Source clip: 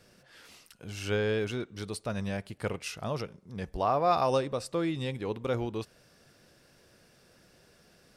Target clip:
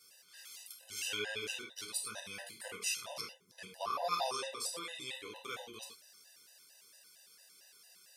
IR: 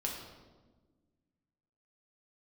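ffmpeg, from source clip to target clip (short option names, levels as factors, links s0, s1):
-filter_complex "[0:a]aderivative[s0];[1:a]atrim=start_sample=2205,atrim=end_sample=4410,asetrate=34839,aresample=44100[s1];[s0][s1]afir=irnorm=-1:irlink=0,afftfilt=real='re*gt(sin(2*PI*4.4*pts/sr)*(1-2*mod(floor(b*sr/1024/510),2)),0)':imag='im*gt(sin(2*PI*4.4*pts/sr)*(1-2*mod(floor(b*sr/1024/510),2)),0)':win_size=1024:overlap=0.75,volume=2.51"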